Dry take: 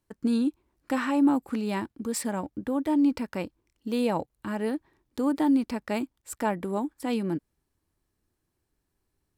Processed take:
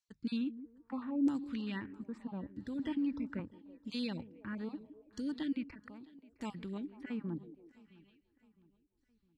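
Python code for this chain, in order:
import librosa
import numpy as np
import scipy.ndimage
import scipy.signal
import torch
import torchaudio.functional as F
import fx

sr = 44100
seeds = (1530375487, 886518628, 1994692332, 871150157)

y = fx.spec_dropout(x, sr, seeds[0], share_pct=22)
y = fx.tone_stack(y, sr, knobs='6-0-2')
y = fx.echo_stepped(y, sr, ms=163, hz=300.0, octaves=0.7, feedback_pct=70, wet_db=-12.0)
y = fx.filter_lfo_lowpass(y, sr, shape='saw_down', hz=0.78, low_hz=470.0, high_hz=6400.0, q=2.0)
y = fx.level_steps(y, sr, step_db=20, at=(5.63, 6.38))
y = fx.hum_notches(y, sr, base_hz=50, count=3)
y = fx.echo_feedback(y, sr, ms=662, feedback_pct=45, wet_db=-22.5)
y = fx.band_squash(y, sr, depth_pct=70, at=(2.79, 3.4))
y = F.gain(torch.from_numpy(y), 9.0).numpy()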